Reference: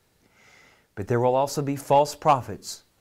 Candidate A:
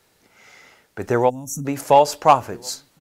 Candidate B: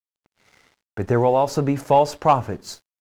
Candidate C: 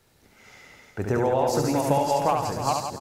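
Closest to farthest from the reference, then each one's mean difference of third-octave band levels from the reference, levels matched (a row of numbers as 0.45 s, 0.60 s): B, A, C; 2.5 dB, 4.0 dB, 8.5 dB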